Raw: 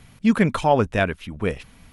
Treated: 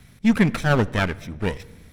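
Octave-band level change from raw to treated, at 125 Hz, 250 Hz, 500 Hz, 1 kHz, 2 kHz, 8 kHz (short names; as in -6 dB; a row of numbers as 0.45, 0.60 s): +2.5, +0.5, -4.0, -5.0, +1.5, +2.0 dB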